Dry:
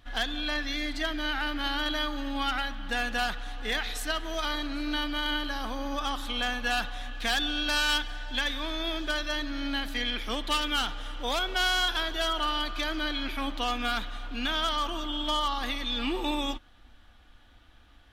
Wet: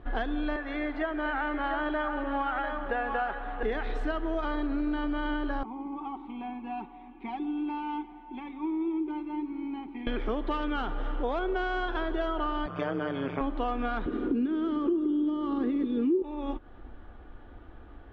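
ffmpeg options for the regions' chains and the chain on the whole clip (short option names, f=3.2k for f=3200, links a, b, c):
-filter_complex "[0:a]asettb=1/sr,asplit=3[a][b][c];[a]atrim=end=0.564[d];[b]atrim=start=0.56:end=3.63,asetpts=PTS-STARTPTS,afade=t=in:d=0.004:c=qsin,afade=t=out:st=3.066:d=0.004:c=qsin,acrossover=split=420 3100:gain=0.2 1 0.224[e][f][g];[e][f][g]amix=inputs=3:normalize=0,aecho=1:1:695:0.447,atrim=end_sample=135387[h];[c]atrim=start=3.626[i];[d][h]acrossfade=d=0.004:c1=hsin:c2=qsin[j];[j][i]acrossfade=d=0.004:c1=qsin:c2=hsin,asettb=1/sr,asplit=3[k][l][m];[k]atrim=end=5.634[n];[l]atrim=start=5.63:end=10.07,asetpts=PTS-STARTPTS,afade=t=in:d=0.004:c=qsin,afade=t=out:st=4.436:d=0.004:c=qsin,asplit=3[o][p][q];[o]bandpass=f=300:t=q:w=8,volume=0dB[r];[p]bandpass=f=870:t=q:w=8,volume=-6dB[s];[q]bandpass=f=2.24k:t=q:w=8,volume=-9dB[t];[r][s][t]amix=inputs=3:normalize=0,aecho=1:1:5.3:0.71,atrim=end_sample=195804[u];[m]atrim=start=10.066[v];[n][u]acrossfade=d=0.004:c1=hsin:c2=qsin[w];[w][v]acrossfade=d=0.004:c1=qsin:c2=hsin,asettb=1/sr,asplit=3[x][y][z];[x]atrim=end=12.664[aa];[y]atrim=start=12.66:end=13.41,asetpts=PTS-STARTPTS,afade=t=in:d=0.004:c=qsin,afade=t=out:st=0.746:d=0.004:c=qsin,tremolo=f=140:d=0.974,asuperstop=centerf=4000:order=12:qfactor=7.1,highpass=150,equalizer=f=380:t=q:w=4:g=-8,equalizer=f=580:t=q:w=4:g=5,equalizer=f=6.9k:t=q:w=4:g=5,lowpass=f=8.7k:w=0.5412,lowpass=f=8.7k:w=1.3066[ab];[z]atrim=start=13.406[ac];[aa][ab]acrossfade=d=0.004:c1=hsin:c2=qsin[ad];[ad][ac]acrossfade=d=0.004:c1=qsin:c2=hsin,asettb=1/sr,asplit=3[ae][af][ag];[ae]atrim=end=14.064[ah];[af]atrim=start=14.06:end=16.22,asetpts=PTS-STARTPTS,afade=t=in:d=0.004:c=qsin,afade=t=out:st=2.156:d=0.004:c=qsin,highpass=130,acompressor=threshold=-32dB:ratio=2:attack=3.2:release=140:knee=1:detection=peak,lowshelf=f=520:t=q:w=3:g=11[ai];[ag]atrim=start=16.216[aj];[ah][ai]acrossfade=d=0.004:c1=hsin:c2=qsin[ak];[ak][aj]acrossfade=d=0.004:c1=qsin:c2=hsin,lowpass=1.2k,equalizer=f=390:w=2.7:g=11,acompressor=threshold=-36dB:ratio=6,volume=9dB"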